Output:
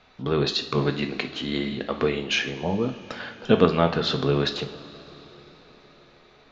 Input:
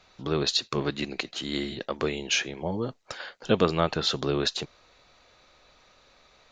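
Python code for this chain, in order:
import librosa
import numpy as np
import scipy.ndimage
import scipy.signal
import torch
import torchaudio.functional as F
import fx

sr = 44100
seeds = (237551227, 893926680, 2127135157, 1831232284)

y = scipy.signal.sosfilt(scipy.signal.butter(2, 3700.0, 'lowpass', fs=sr, output='sos'), x)
y = fx.peak_eq(y, sr, hz=230.0, db=5.5, octaves=0.44)
y = fx.rev_double_slope(y, sr, seeds[0], early_s=0.5, late_s=4.7, knee_db=-17, drr_db=5.5)
y = F.gain(torch.from_numpy(y), 2.5).numpy()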